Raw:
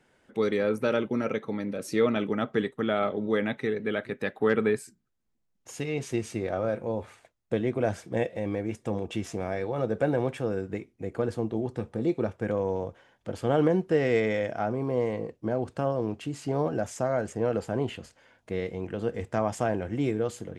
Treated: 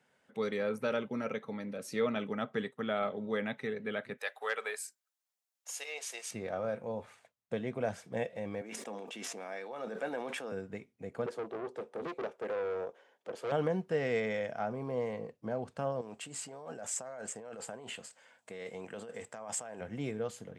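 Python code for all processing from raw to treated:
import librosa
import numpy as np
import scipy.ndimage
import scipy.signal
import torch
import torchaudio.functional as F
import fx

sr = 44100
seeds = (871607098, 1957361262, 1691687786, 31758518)

y = fx.chain(x, sr, fx.highpass(hz=540.0, slope=24),
    fx.high_shelf(hz=3700.0, db=10.5), at=(4.18, 6.31))
y = fx.chain(y, sr, fx.highpass(hz=260.0, slope=24),
    fx.dynamic_eq(hz=470.0, q=1.0, threshold_db=-38.0, ratio=4.0, max_db=-6),
    fx.sustainer(db_per_s=24.0), at=(8.61, 10.52))
y = fx.chain(y, sr, fx.highpass_res(hz=380.0, q=3.0),
    fx.tube_stage(drive_db=24.0, bias=0.3),
    fx.doppler_dist(depth_ms=0.27), at=(11.26, 13.52))
y = fx.chain(y, sr, fx.peak_eq(hz=7900.0, db=13.5, octaves=0.29),
    fx.over_compress(threshold_db=-33.0, ratio=-1.0),
    fx.highpass(hz=410.0, slope=6), at=(16.01, 19.81))
y = scipy.signal.sosfilt(scipy.signal.butter(2, 140.0, 'highpass', fs=sr, output='sos'), y)
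y = fx.peak_eq(y, sr, hz=330.0, db=-11.5, octaves=0.4)
y = y * librosa.db_to_amplitude(-5.5)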